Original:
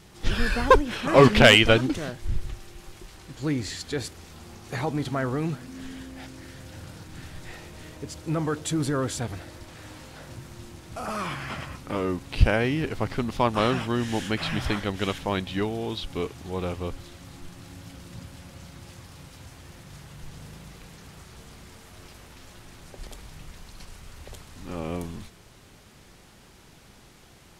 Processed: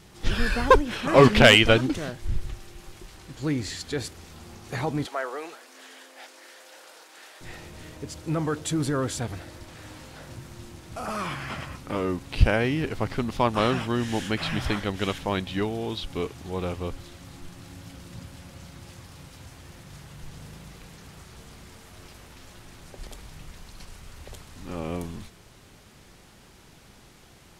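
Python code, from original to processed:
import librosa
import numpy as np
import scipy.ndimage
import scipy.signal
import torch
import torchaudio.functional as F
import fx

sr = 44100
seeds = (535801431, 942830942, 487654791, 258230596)

y = fx.highpass(x, sr, hz=460.0, slope=24, at=(5.06, 7.41))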